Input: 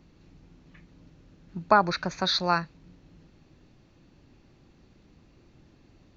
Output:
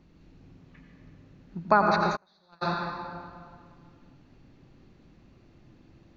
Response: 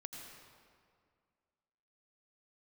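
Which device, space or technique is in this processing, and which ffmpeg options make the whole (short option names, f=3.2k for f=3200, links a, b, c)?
swimming-pool hall: -filter_complex "[1:a]atrim=start_sample=2205[a];[0:a][a]afir=irnorm=-1:irlink=0,highshelf=f=4.9k:g=-7,asplit=3[b][c][d];[b]afade=t=out:st=2.15:d=0.02[e];[c]agate=range=-37dB:threshold=-21dB:ratio=16:detection=peak,afade=t=in:st=2.15:d=0.02,afade=t=out:st=2.61:d=0.02[f];[d]afade=t=in:st=2.61:d=0.02[g];[e][f][g]amix=inputs=3:normalize=0,volume=4.5dB"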